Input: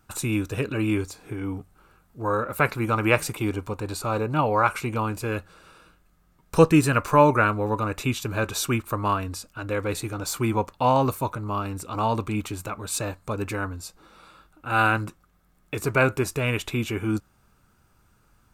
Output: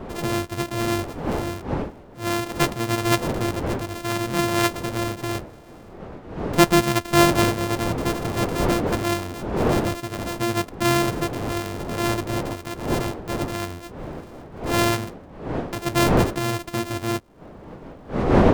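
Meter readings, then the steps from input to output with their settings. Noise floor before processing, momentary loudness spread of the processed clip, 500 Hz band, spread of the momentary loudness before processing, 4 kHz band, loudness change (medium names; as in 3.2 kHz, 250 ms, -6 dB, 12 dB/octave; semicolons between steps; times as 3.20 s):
-63 dBFS, 15 LU, +2.0 dB, 12 LU, +7.0 dB, +1.5 dB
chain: sorted samples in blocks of 128 samples; wind noise 500 Hz -28 dBFS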